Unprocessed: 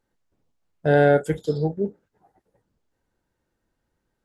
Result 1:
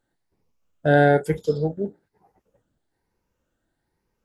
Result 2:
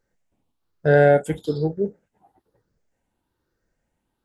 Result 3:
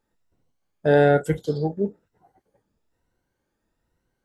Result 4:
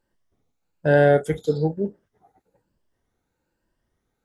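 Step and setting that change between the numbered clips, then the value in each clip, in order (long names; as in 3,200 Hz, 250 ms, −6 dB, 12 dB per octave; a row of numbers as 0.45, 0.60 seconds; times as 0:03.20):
rippled gain that drifts along the octave scale, ripples per octave: 0.83, 0.56, 2, 1.3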